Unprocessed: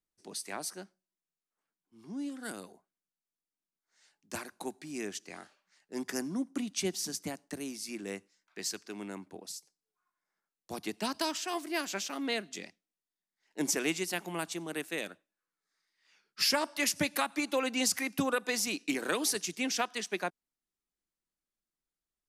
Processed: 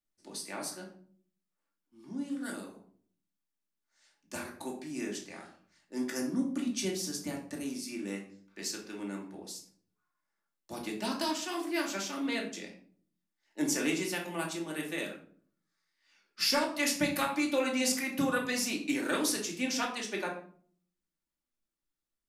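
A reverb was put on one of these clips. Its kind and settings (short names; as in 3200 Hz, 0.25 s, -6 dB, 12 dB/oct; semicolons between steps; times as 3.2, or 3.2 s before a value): shoebox room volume 530 m³, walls furnished, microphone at 2.5 m; gain -3.5 dB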